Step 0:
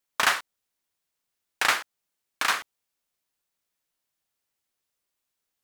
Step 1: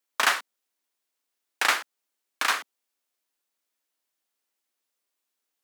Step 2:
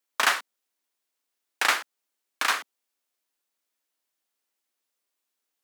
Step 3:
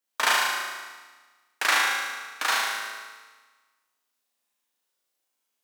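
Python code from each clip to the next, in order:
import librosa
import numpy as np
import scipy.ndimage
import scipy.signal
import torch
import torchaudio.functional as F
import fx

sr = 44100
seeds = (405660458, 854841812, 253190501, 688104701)

y1 = scipy.signal.sosfilt(scipy.signal.butter(6, 220.0, 'highpass', fs=sr, output='sos'), x)
y2 = y1
y3 = fx.room_flutter(y2, sr, wall_m=6.4, rt60_s=1.3)
y3 = fx.rev_plate(y3, sr, seeds[0], rt60_s=1.2, hf_ratio=0.8, predelay_ms=0, drr_db=3.5)
y3 = y3 * librosa.db_to_amplitude(-3.5)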